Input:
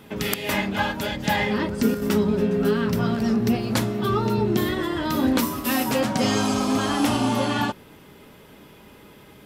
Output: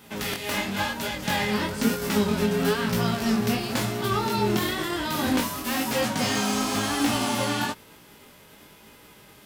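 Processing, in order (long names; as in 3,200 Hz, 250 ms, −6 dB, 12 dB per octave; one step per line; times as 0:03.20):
spectral envelope flattened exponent 0.6
chorus effect 1 Hz, delay 17 ms, depth 7.2 ms
slew-rate limiting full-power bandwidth 230 Hz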